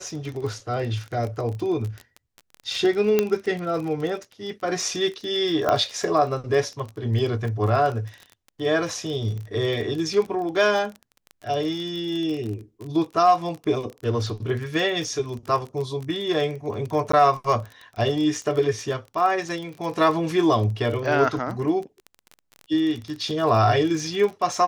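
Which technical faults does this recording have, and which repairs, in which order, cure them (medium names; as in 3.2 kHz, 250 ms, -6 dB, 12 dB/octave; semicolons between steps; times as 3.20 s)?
crackle 29 per s -29 dBFS
3.19 s: pop -6 dBFS
5.69 s: pop -9 dBFS
17.12–17.13 s: dropout 14 ms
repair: de-click; interpolate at 17.12 s, 14 ms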